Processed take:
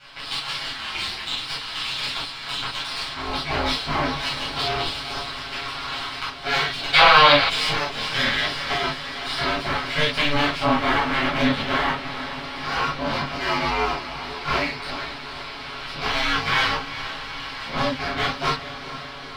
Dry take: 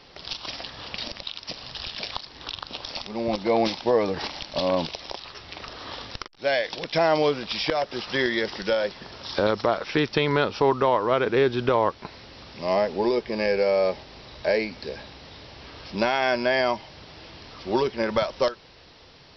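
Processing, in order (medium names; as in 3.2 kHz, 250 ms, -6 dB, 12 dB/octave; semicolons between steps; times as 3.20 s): comb filter that takes the minimum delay 7.2 ms; dynamic bell 1.3 kHz, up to -7 dB, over -40 dBFS, Q 0.77; 0.76–1.25 s: frequency shift -56 Hz; high-order bell 2.1 kHz +12.5 dB 2.5 oct; ring modulator 150 Hz; echo that smears into a reverb 452 ms, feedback 72%, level -12 dB; reverberation, pre-delay 9 ms, DRR -9.5 dB; 6.94–7.49 s: time-frequency box 460–4900 Hz +10 dB; trim -8.5 dB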